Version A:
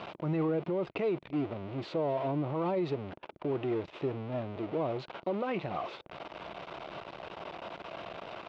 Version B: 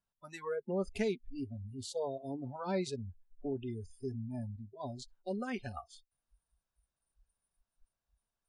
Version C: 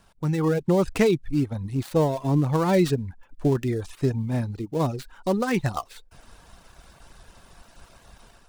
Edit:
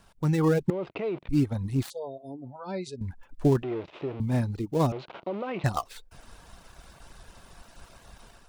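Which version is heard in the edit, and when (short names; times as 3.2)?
C
0.7–1.29 from A
1.9–3.01 from B
3.63–4.2 from A
4.92–5.64 from A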